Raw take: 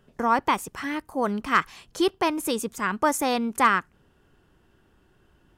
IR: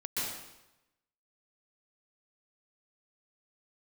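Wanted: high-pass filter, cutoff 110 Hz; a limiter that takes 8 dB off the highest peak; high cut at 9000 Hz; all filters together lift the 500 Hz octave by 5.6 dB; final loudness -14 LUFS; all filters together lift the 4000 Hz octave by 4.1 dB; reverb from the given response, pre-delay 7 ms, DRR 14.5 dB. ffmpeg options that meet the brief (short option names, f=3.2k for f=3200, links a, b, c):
-filter_complex "[0:a]highpass=110,lowpass=9k,equalizer=f=500:t=o:g=7,equalizer=f=4k:t=o:g=5.5,alimiter=limit=-13dB:level=0:latency=1,asplit=2[a][b];[1:a]atrim=start_sample=2205,adelay=7[c];[b][c]afir=irnorm=-1:irlink=0,volume=-19.5dB[d];[a][d]amix=inputs=2:normalize=0,volume=11.5dB"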